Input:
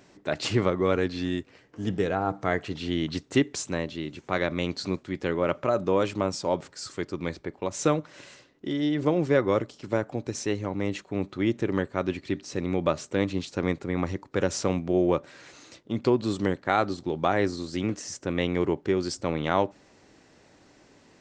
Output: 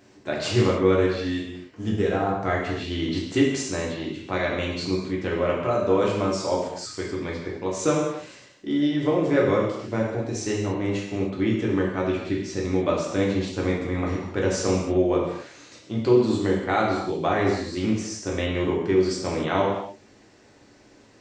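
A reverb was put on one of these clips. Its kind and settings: non-linear reverb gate 0.32 s falling, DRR -3.5 dB; gain -2.5 dB

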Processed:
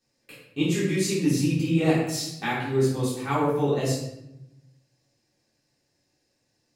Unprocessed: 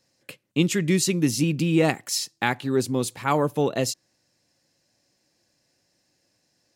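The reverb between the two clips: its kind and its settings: shoebox room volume 280 m³, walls mixed, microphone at 3.6 m; gain -13 dB

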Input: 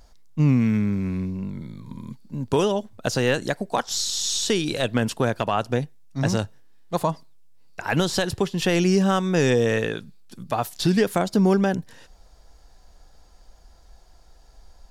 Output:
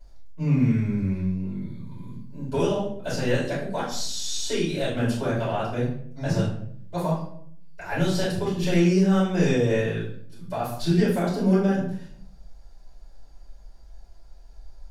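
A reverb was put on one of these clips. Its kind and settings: shoebox room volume 95 m³, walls mixed, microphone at 4.7 m; gain -19.5 dB

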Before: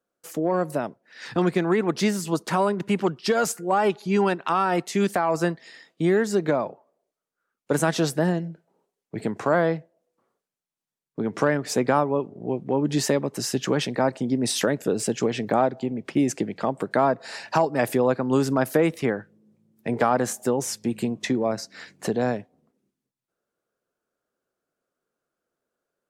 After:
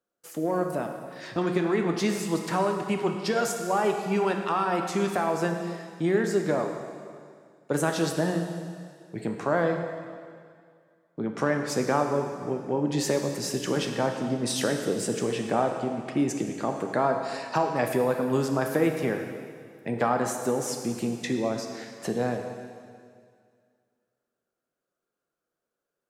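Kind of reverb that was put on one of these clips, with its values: plate-style reverb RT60 2.1 s, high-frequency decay 1×, DRR 3.5 dB; gain -4.5 dB

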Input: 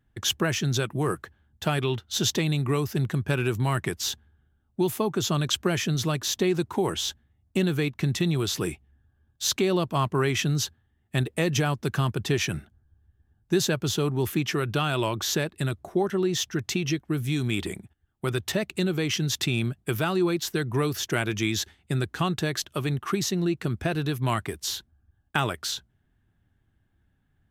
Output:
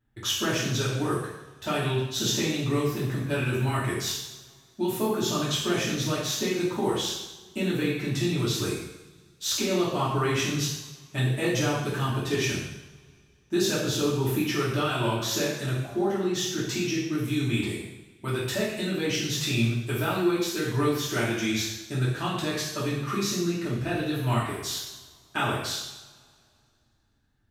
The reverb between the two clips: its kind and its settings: two-slope reverb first 0.83 s, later 2.5 s, from -21 dB, DRR -9 dB; gain -9.5 dB

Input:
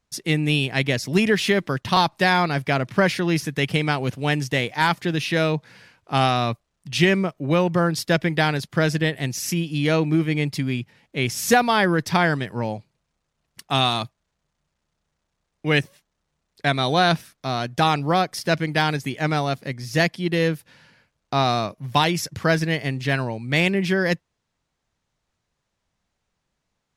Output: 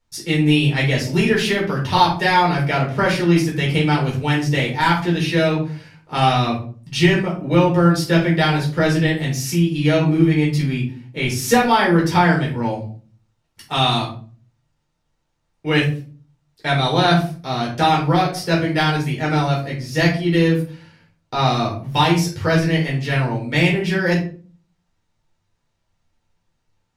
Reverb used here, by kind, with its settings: shoebox room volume 290 m³, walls furnished, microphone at 4.4 m; gain -5 dB

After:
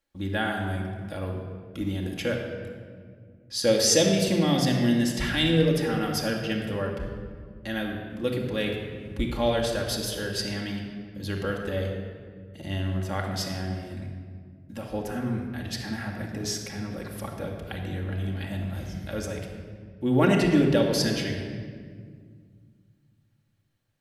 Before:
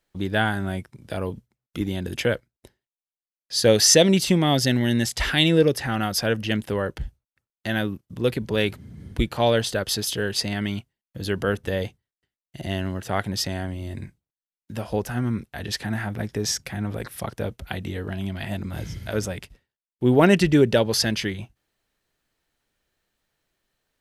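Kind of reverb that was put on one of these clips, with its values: shoebox room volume 3200 m³, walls mixed, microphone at 2.3 m; gain -7.5 dB

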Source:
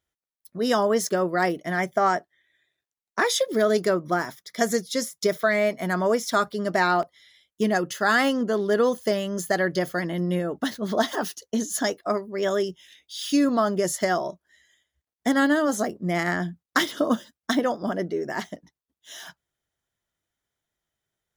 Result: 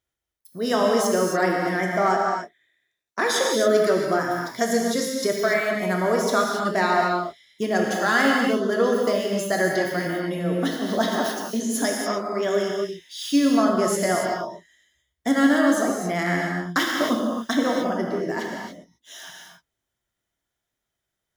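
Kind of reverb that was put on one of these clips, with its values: non-linear reverb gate 0.31 s flat, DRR -1 dB; gain -1.5 dB

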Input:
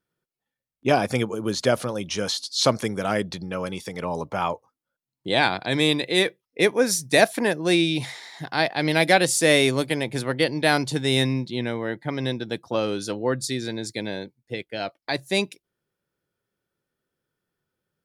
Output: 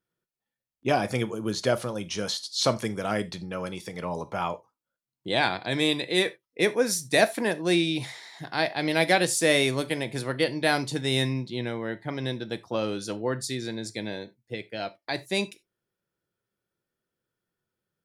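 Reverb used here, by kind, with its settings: non-linear reverb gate 0.11 s falling, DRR 11.5 dB; gain -4 dB

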